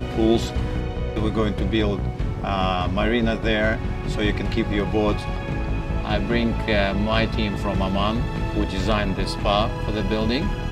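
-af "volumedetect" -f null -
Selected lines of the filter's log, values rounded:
mean_volume: -22.1 dB
max_volume: -4.0 dB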